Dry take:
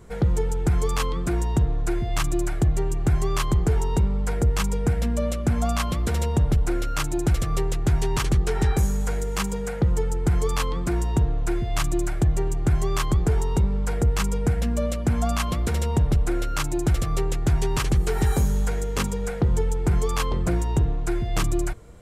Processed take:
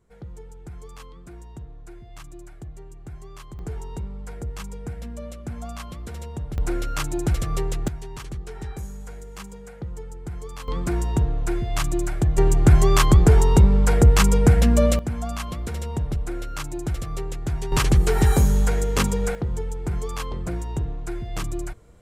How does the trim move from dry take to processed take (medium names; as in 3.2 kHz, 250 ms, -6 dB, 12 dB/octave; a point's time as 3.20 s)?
-18 dB
from 3.59 s -11 dB
from 6.58 s -1 dB
from 7.88 s -12.5 dB
from 10.68 s 0 dB
from 12.38 s +7.5 dB
from 14.99 s -5.5 dB
from 17.72 s +4 dB
from 19.35 s -5.5 dB